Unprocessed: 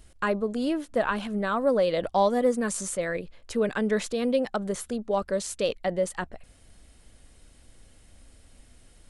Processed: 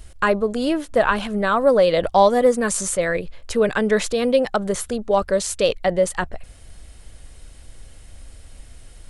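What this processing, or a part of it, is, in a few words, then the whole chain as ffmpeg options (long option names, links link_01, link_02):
low shelf boost with a cut just above: -af "lowshelf=frequency=110:gain=5,equalizer=frequency=240:width_type=o:width=0.97:gain=-5.5,volume=8.5dB"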